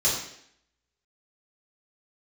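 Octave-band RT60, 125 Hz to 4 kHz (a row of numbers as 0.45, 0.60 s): 0.60, 0.70, 0.70, 0.65, 0.75, 0.70 s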